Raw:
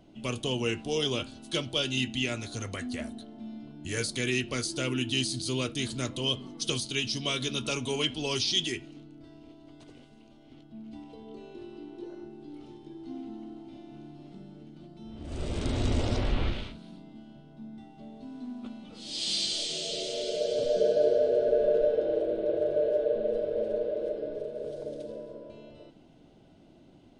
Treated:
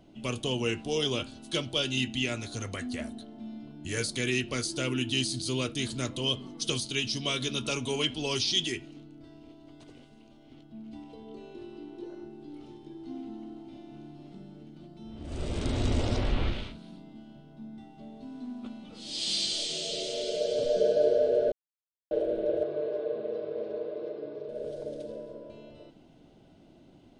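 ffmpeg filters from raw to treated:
-filter_complex "[0:a]asettb=1/sr,asplit=3[a][b][c];[a]atrim=end=22.634[d];[b]atrim=start=22.63:end=24.49,asetpts=PTS-STARTPTS,afade=t=in:d=0.004:c=qsin,afade=t=out:st=1.856:d=0.004:c=qsin,highpass=f=120:w=0.5412,highpass=f=120:w=1.3066,equalizer=f=220:t=q:w=4:g=-7,equalizer=f=560:t=q:w=4:g=-10,equalizer=f=1.1k:t=q:w=4:g=7,equalizer=f=1.6k:t=q:w=4:g=-4,equalizer=f=3.1k:t=q:w=4:g=-5,lowpass=f=4.9k:w=0.5412,lowpass=f=4.9k:w=1.3066[e];[c]atrim=start=24.486[f];[d][e]acrossfade=d=0.004:c1=hsin:c2=qsin[g];[g][f]acrossfade=d=0.004:c1=qsin:c2=hsin,asplit=3[h][i][j];[h]atrim=end=21.52,asetpts=PTS-STARTPTS,afade=t=out:st=21.516:d=0.004:c=hsin[k];[i]atrim=start=21.52:end=22.11,asetpts=PTS-STARTPTS,volume=0[l];[j]atrim=start=22.11,asetpts=PTS-STARTPTS,afade=t=in:d=0.004:c=hsin[m];[k][l][m]concat=n=3:v=0:a=1"

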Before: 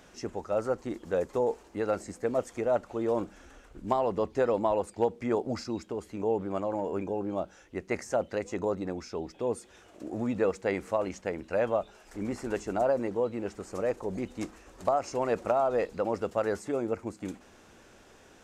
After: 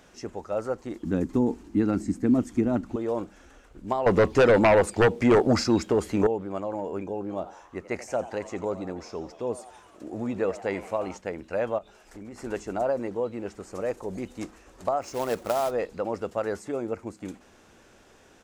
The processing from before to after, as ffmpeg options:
-filter_complex "[0:a]asettb=1/sr,asplit=3[a][b][c];[a]atrim=end=1.034[d];[b]atrim=start=1.03:end=2.96,asetpts=PTS-STARTPTS,afade=t=in:d=0.004:c=qsin,afade=t=out:st=1.926:d=0.004:c=qsin,lowshelf=f=380:t=q:w=3:g=10.5[e];[c]atrim=start=2.956[f];[d][e]acrossfade=d=0.004:c1=hsin:c2=qsin[g];[g][f]acrossfade=d=0.004:c1=qsin:c2=hsin,asettb=1/sr,asplit=3[h][i][j];[h]atrim=end=4.064[k];[i]atrim=start=4.06:end=6.27,asetpts=PTS-STARTPTS,afade=t=in:d=0.004:c=qsin,afade=t=out:st=2.206:d=0.004:c=qsin,aeval=exprs='0.211*sin(PI/2*2.82*val(0)/0.211)':c=same[l];[j]atrim=start=6.266[m];[k][l]acrossfade=d=0.004:c1=hsin:c2=qsin[n];[n][m]acrossfade=d=0.004:c1=qsin:c2=hsin,asplit=3[o][p][q];[o]afade=t=out:st=7.29:d=0.02[r];[p]asplit=7[s][t][u][v][w][x][y];[t]adelay=87,afreqshift=130,volume=-15.5dB[z];[u]adelay=174,afreqshift=260,volume=-20.1dB[aa];[v]adelay=261,afreqshift=390,volume=-24.7dB[ab];[w]adelay=348,afreqshift=520,volume=-29.2dB[ac];[x]adelay=435,afreqshift=650,volume=-33.8dB[ad];[y]adelay=522,afreqshift=780,volume=-38.4dB[ae];[s][z][aa][ab][ac][ad][ae]amix=inputs=7:normalize=0,afade=t=in:st=7.29:d=0.02,afade=t=out:st=11.16:d=0.02[af];[q]afade=t=in:st=11.16:d=0.02[ag];[r][af][ag]amix=inputs=3:normalize=0,asettb=1/sr,asplit=3[ah][ai][aj];[ah]atrim=end=11.784[ak];[ai]atrim=start=11.78:end=12.42,asetpts=PTS-STARTPTS,afade=t=in:d=0.004:c=qsin,afade=t=out:st=0.636:d=0.004:c=qsin,acompressor=threshold=-38dB:ratio=6:attack=3.2:release=140:knee=1:detection=peak[al];[aj]atrim=start=12.416[am];[ak][al]acrossfade=d=0.004:c1=hsin:c2=qsin[an];[an][am]acrossfade=d=0.004:c1=qsin:c2=hsin,asettb=1/sr,asplit=3[ao][ap][aq];[ao]atrim=end=13.814[ar];[ap]atrim=start=13.81:end=14.41,asetpts=PTS-STARTPTS,afade=t=in:d=0.004:c=qsin,afade=t=out:st=0.596:d=0.004:c=qsin,highshelf=f=6.8k:g=6.5[as];[aq]atrim=start=14.406[at];[ar][as]acrossfade=d=0.004:c1=hsin:c2=qsin[au];[au][at]acrossfade=d=0.004:c1=qsin:c2=hsin,asplit=3[av][aw][ax];[av]afade=t=out:st=15.01:d=0.02[ay];[aw]acrusher=bits=3:mode=log:mix=0:aa=0.000001,afade=t=in:st=15.01:d=0.02,afade=t=out:st=15.7:d=0.02[az];[ax]afade=t=in:st=15.7:d=0.02[ba];[ay][az][ba]amix=inputs=3:normalize=0"

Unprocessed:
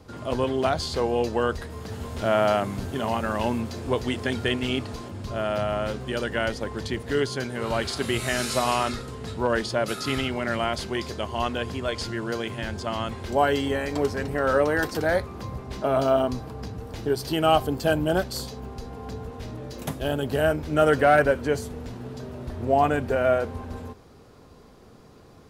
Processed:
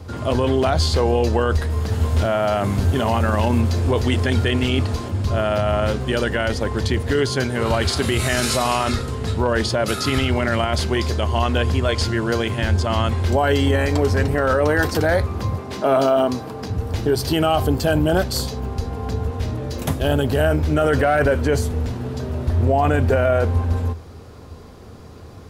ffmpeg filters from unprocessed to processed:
-filter_complex "[0:a]asettb=1/sr,asplit=3[a][b][c];[a]atrim=end=15.554[d];[b]atrim=start=15.55:end=16.7,asetpts=PTS-STARTPTS,afade=t=in:d=0.004:c=qsin,afade=t=out:st=1.146:d=0.004:c=qsin,highpass=190[e];[c]atrim=start=16.696[f];[d][e]acrossfade=d=0.004:c1=hsin:c2=qsin[g];[g][f]acrossfade=d=0.004:c1=qsin:c2=hsin,equalizer=f=83:w=2.8:g=12.5,alimiter=limit=-17dB:level=0:latency=1:release=19,volume=8dB"

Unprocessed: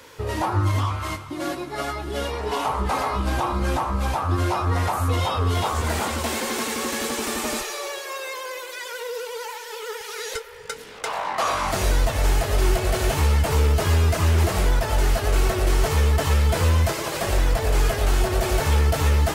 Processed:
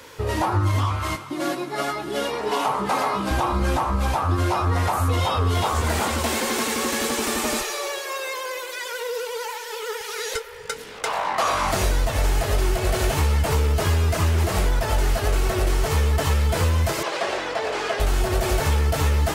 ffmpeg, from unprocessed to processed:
-filter_complex "[0:a]asettb=1/sr,asplit=3[a][b][c];[a]atrim=end=1.154[d];[b]atrim=start=1.15:end=3.31,asetpts=PTS-STARTPTS,afade=t=in:d=0.004:c=qsin,afade=t=out:st=2.156:d=0.004:c=qsin,highpass=f=130:w=0.5412,highpass=f=130:w=1.3066[e];[c]atrim=start=3.306[f];[d][e]acrossfade=d=0.004:c1=hsin:c2=qsin[g];[g][f]acrossfade=d=0.004:c1=qsin:c2=hsin,asettb=1/sr,asplit=3[h][i][j];[h]atrim=end=17.034[k];[i]atrim=start=17.03:end=18,asetpts=PTS-STARTPTS,afade=t=in:d=0.004:c=qsin,afade=t=out:st=0.966:d=0.004:c=qsin,highpass=390,lowpass=4.7k[l];[j]atrim=start=17.996[m];[k][l]acrossfade=d=0.004:c1=hsin:c2=qsin[n];[n][m]acrossfade=d=0.004:c1=qsin:c2=hsin,acompressor=threshold=-19dB:ratio=6,volume=2.5dB"

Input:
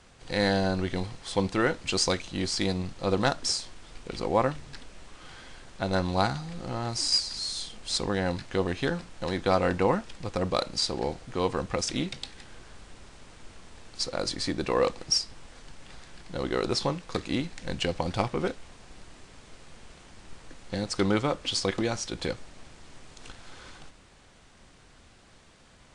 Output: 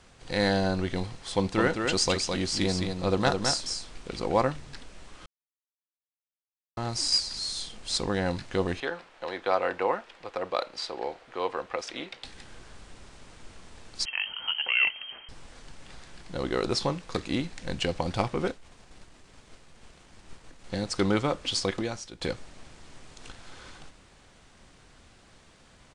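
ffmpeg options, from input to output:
-filter_complex "[0:a]asplit=3[a][b][c];[a]afade=t=out:st=1.55:d=0.02[d];[b]aecho=1:1:212:0.562,afade=t=in:st=1.55:d=0.02,afade=t=out:st=4.41:d=0.02[e];[c]afade=t=in:st=4.41:d=0.02[f];[d][e][f]amix=inputs=3:normalize=0,asettb=1/sr,asplit=3[g][h][i];[g]atrim=end=8.804[j];[h]atrim=start=8.8:end=12.24,asetpts=PTS-STARTPTS,afade=t=in:d=0.004:c=qsin,afade=t=out:st=3.436:d=0.004:c=qsin,acrossover=split=380 3700:gain=0.0891 1 0.2[k][l][m];[k][l][m]amix=inputs=3:normalize=0[n];[i]atrim=start=12.236[o];[j][n]acrossfade=d=0.004:c1=hsin:c2=qsin[p];[p][o]acrossfade=d=0.004:c1=qsin:c2=hsin,asettb=1/sr,asplit=3[q][r][s];[q]atrim=end=14.054[t];[r]atrim=start=14.05:end=15.29,asetpts=PTS-STARTPTS,afade=t=in:d=0.004:c=qsin,afade=t=out:st=1.236:d=0.004:c=qsin,lowpass=f=2.7k:t=q:w=0.5098,lowpass=f=2.7k:t=q:w=0.6013,lowpass=f=2.7k:t=q:w=0.9,lowpass=f=2.7k:t=q:w=2.563,afreqshift=-3200[u];[s]atrim=start=15.286[v];[t][u]acrossfade=d=0.004:c1=hsin:c2=qsin[w];[w][v]acrossfade=d=0.004:c1=qsin:c2=hsin,asettb=1/sr,asplit=3[x][y][z];[x]atrim=end=18.514[aa];[y]atrim=start=18.51:end=20.64,asetpts=PTS-STARTPTS,afade=t=in:d=0.004:c=qsin,afade=t=out:st=2.126:d=0.004:c=qsin,aeval=exprs='(tanh(35.5*val(0)+0.7)-tanh(0.7))/35.5':c=same[ab];[z]atrim=start=20.636[ac];[aa][ab]acrossfade=d=0.004:c1=hsin:c2=qsin[ad];[ad][ac]acrossfade=d=0.004:c1=qsin:c2=hsin,asplit=4[ae][af][ag][ah];[ae]atrim=end=5.26,asetpts=PTS-STARTPTS,afade=t=out:st=5.256:d=0.004:c=hsin[ai];[af]atrim=start=5.26:end=6.77,asetpts=PTS-STARTPTS,volume=0[aj];[ag]atrim=start=6.77:end=22.21,asetpts=PTS-STARTPTS,afade=t=in:d=0.004:c=hsin,afade=t=out:st=14.84:d=0.6:silence=0.199526[ak];[ah]atrim=start=22.21,asetpts=PTS-STARTPTS,afade=t=in:d=0.004:c=hsin:silence=0.199526[al];[ai][aj][ak][al]concat=n=4:v=0:a=1"

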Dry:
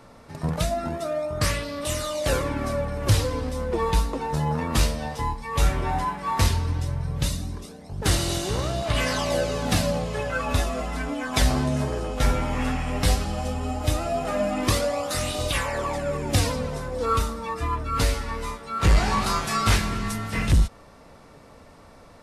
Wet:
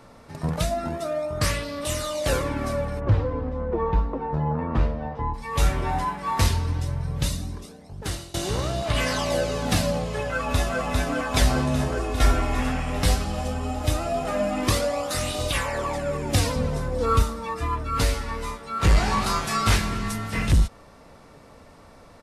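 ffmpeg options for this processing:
-filter_complex "[0:a]asplit=3[a][b][c];[a]afade=t=out:st=2.99:d=0.02[d];[b]lowpass=1.3k,afade=t=in:st=2.99:d=0.02,afade=t=out:st=5.33:d=0.02[e];[c]afade=t=in:st=5.33:d=0.02[f];[d][e][f]amix=inputs=3:normalize=0,asplit=2[g][h];[h]afade=t=in:st=10.2:d=0.01,afade=t=out:st=10.81:d=0.01,aecho=0:1:400|800|1200|1600|2000|2400|2800|3200|3600|4000|4400|4800:0.707946|0.530959|0.39822|0.298665|0.223998|0.167999|0.125999|0.0944994|0.0708745|0.0531559|0.0398669|0.0299002[i];[g][i]amix=inputs=2:normalize=0,asettb=1/sr,asplit=3[j][k][l];[j]atrim=end=11.974[m];[k]atrim=start=11.97:end=12.6,asetpts=PTS-STARTPTS,afade=t=in:d=0.004:c=qsin,afade=t=out:st=0.626:d=0.004:c=qsin,aecho=1:1:2.8:0.65,atrim=end_sample=27783[n];[l]atrim=start=12.596[o];[m][n]acrossfade=d=0.004:c1=hsin:c2=qsin[p];[p][o]acrossfade=d=0.004:c1=qsin:c2=hsin,asettb=1/sr,asplit=3[q][r][s];[q]atrim=end=16.564[t];[r]atrim=start=16.56:end=17.23,asetpts=PTS-STARTPTS,afade=t=in:d=0.004:c=qsin,afade=t=out:st=0.666:d=0.004:c=qsin,lowshelf=f=280:g=6.5[u];[s]atrim=start=17.226[v];[t][u]acrossfade=d=0.004:c1=hsin:c2=qsin[w];[w][v]acrossfade=d=0.004:c1=qsin:c2=hsin,asplit=2[x][y];[x]atrim=end=8.34,asetpts=PTS-STARTPTS,afade=t=out:st=7.24:d=1.1:c=qsin:silence=0.0630957[z];[y]atrim=start=8.34,asetpts=PTS-STARTPTS,afade=t=in:d=0.004:c=hsin:silence=0.0630957[aa];[z][aa]concat=n=2:v=0:a=1"

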